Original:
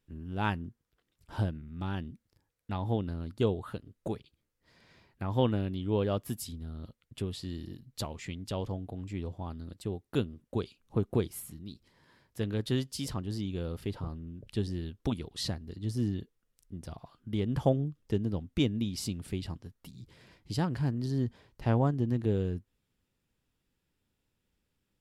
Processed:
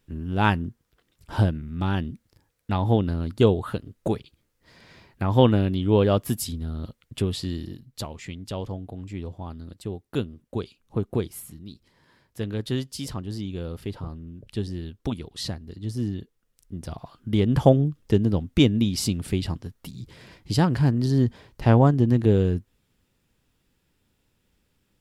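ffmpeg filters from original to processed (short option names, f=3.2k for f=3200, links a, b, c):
-af "volume=17dB,afade=t=out:st=7.39:d=0.51:silence=0.446684,afade=t=in:st=16.21:d=1.12:silence=0.446684"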